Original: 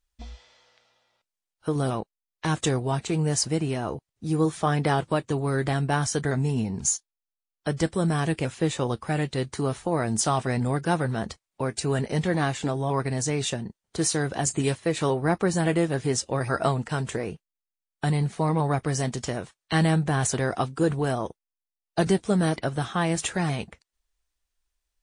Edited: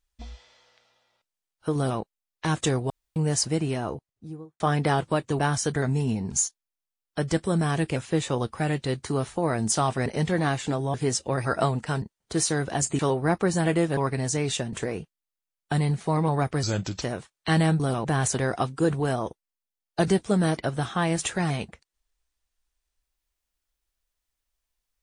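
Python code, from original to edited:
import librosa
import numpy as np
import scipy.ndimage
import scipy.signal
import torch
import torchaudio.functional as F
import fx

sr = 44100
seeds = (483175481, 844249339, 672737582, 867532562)

y = fx.studio_fade_out(x, sr, start_s=3.75, length_s=0.85)
y = fx.edit(y, sr, fx.duplicate(start_s=1.76, length_s=0.25, to_s=20.04),
    fx.room_tone_fill(start_s=2.9, length_s=0.26),
    fx.cut(start_s=5.39, length_s=0.49),
    fx.cut(start_s=10.55, length_s=1.47),
    fx.swap(start_s=12.9, length_s=0.76, other_s=15.97, other_length_s=1.08),
    fx.cut(start_s=14.63, length_s=0.36),
    fx.speed_span(start_s=18.95, length_s=0.31, speed=0.8), tone=tone)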